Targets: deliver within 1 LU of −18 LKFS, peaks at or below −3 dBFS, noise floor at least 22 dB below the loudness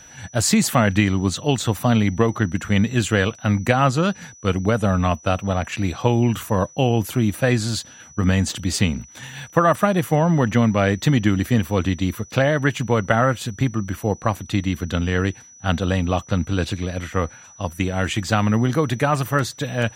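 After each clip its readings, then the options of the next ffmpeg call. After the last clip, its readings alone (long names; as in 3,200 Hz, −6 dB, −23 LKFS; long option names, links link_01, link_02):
interfering tone 5,900 Hz; level of the tone −44 dBFS; integrated loudness −21.0 LKFS; sample peak −1.0 dBFS; target loudness −18.0 LKFS
→ -af "bandreject=frequency=5900:width=30"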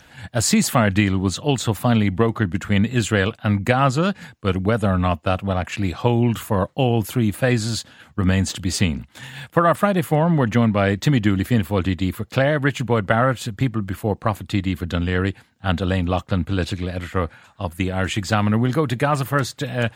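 interfering tone none found; integrated loudness −21.0 LKFS; sample peak −1.0 dBFS; target loudness −18.0 LKFS
→ -af "volume=3dB,alimiter=limit=-3dB:level=0:latency=1"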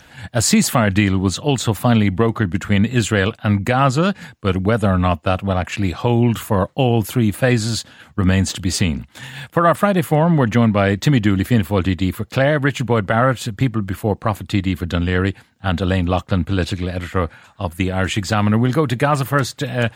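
integrated loudness −18.0 LKFS; sample peak −3.0 dBFS; background noise floor −49 dBFS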